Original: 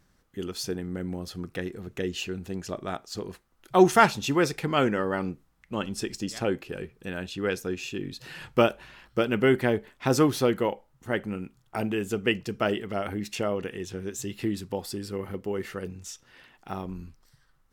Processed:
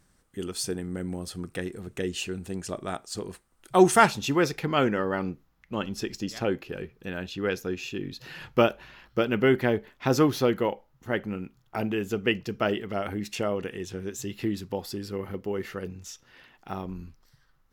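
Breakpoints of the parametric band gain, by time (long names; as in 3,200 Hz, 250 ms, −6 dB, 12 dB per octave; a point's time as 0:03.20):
parametric band 8,700 Hz 0.37 octaves
0:03.95 +11.5 dB
0:04.14 0 dB
0:04.65 −11.5 dB
0:12.70 −11.5 dB
0:13.20 −1.5 dB
0:13.93 −1.5 dB
0:14.41 −8 dB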